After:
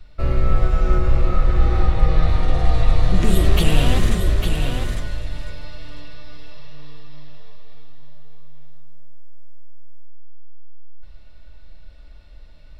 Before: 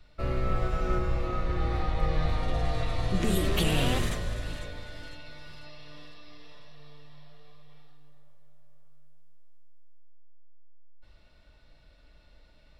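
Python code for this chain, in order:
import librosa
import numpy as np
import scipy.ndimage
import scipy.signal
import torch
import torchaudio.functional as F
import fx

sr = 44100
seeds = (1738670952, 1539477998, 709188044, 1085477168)

y = fx.low_shelf(x, sr, hz=84.0, db=10.5)
y = y + 10.0 ** (-6.0 / 20.0) * np.pad(y, (int(853 * sr / 1000.0), 0))[:len(y)]
y = F.gain(torch.from_numpy(y), 4.5).numpy()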